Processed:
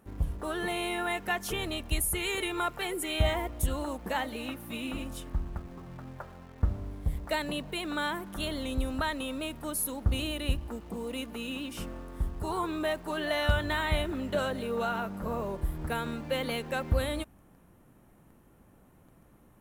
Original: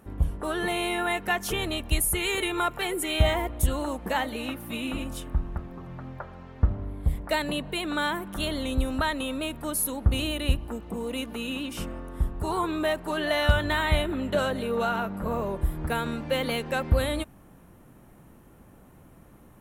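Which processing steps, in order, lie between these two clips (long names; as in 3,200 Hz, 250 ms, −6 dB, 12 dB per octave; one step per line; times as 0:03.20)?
hum removal 68.37 Hz, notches 2
in parallel at −11 dB: bit reduction 7 bits
on the sum: level −6.5 dB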